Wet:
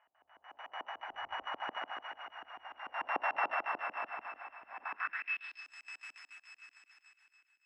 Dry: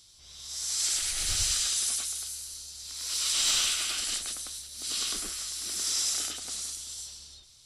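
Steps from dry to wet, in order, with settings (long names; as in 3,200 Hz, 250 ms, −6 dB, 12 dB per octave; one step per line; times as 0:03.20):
samples sorted by size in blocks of 16 samples
source passing by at 0:03.05, 22 m/s, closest 25 metres
low shelf with overshoot 540 Hz −12 dB, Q 1.5
auto-filter low-pass square 6.8 Hz 290–1,800 Hz
feedback echo with a high-pass in the loop 277 ms, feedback 37%, high-pass 710 Hz, level −6 dB
band-pass filter sweep 740 Hz → 7,200 Hz, 0:04.80–0:05.72
level +9.5 dB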